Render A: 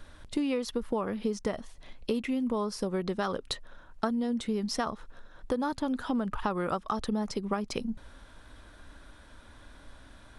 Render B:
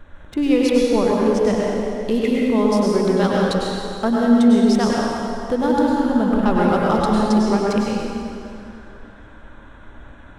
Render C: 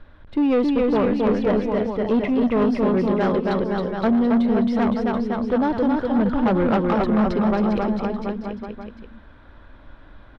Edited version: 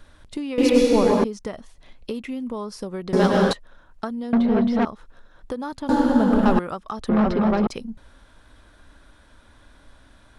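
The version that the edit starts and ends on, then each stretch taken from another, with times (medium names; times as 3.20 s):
A
0.58–1.24 s: from B
3.13–3.53 s: from B
4.33–4.85 s: from C
5.89–6.59 s: from B
7.09–7.67 s: from C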